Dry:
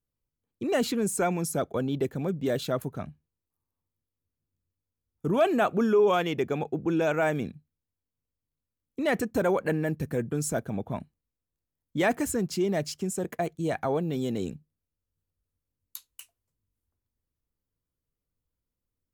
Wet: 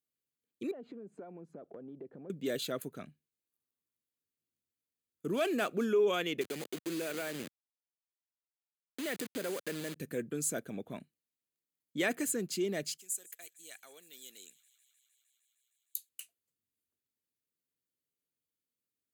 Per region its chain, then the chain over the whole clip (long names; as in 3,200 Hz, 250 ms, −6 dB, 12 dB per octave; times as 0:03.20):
0:00.71–0:02.30: low-pass with resonance 810 Hz, resonance Q 1.7 + downward compressor 10 to 1, threshold −36 dBFS
0:05.28–0:05.85: running median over 9 samples + high-shelf EQ 5,500 Hz +4.5 dB
0:06.41–0:09.96: hold until the input has moved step −29.5 dBFS + high-pass filter 110 Hz + downward compressor 2.5 to 1, threshold −28 dBFS
0:12.97–0:16.09: first difference + delay with a high-pass on its return 154 ms, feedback 82%, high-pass 1,700 Hz, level −21 dB
whole clip: Bessel high-pass filter 370 Hz, order 2; parametric band 870 Hz −14.5 dB 1.2 octaves; notch filter 5,500 Hz, Q 7.2